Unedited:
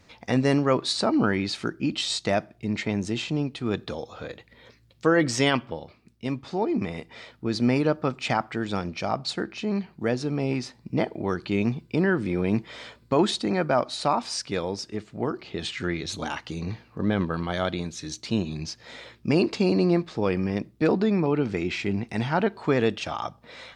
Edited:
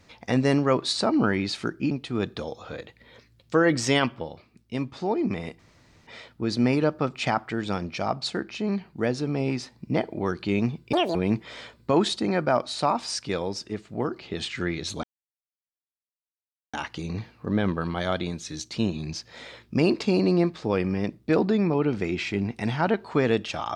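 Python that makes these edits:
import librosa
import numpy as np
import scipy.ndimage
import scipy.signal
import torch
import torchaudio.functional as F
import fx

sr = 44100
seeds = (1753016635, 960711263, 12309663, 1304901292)

y = fx.edit(x, sr, fx.cut(start_s=1.91, length_s=1.51),
    fx.insert_room_tone(at_s=7.1, length_s=0.48),
    fx.speed_span(start_s=11.96, length_s=0.42, speed=1.87),
    fx.insert_silence(at_s=16.26, length_s=1.7), tone=tone)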